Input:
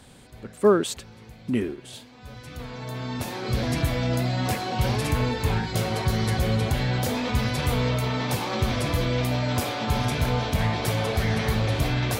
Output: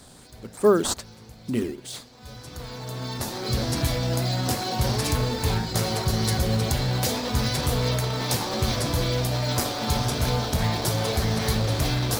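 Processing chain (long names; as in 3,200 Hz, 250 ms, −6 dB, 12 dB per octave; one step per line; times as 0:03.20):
high shelf with overshoot 3,500 Hz +8 dB, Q 1.5
mains-hum notches 50/100/150/200/250 Hz
in parallel at −4 dB: sample-and-hold swept by an LFO 11×, swing 160% 2.5 Hz
on the sum: level −4 dB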